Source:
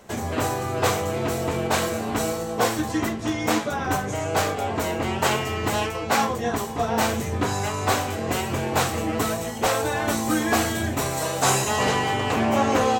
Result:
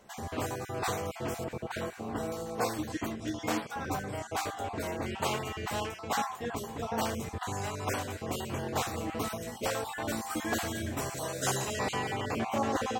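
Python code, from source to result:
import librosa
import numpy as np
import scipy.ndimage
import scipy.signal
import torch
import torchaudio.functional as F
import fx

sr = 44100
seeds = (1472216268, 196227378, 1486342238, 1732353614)

y = fx.spec_dropout(x, sr, seeds[0], share_pct=22)
y = fx.high_shelf(y, sr, hz=2600.0, db=-10.5, at=(1.44, 2.32))
y = y + 10.0 ** (-23.0 / 20.0) * np.pad(y, (int(1097 * sr / 1000.0), 0))[:len(y)]
y = y * librosa.db_to_amplitude(-9.0)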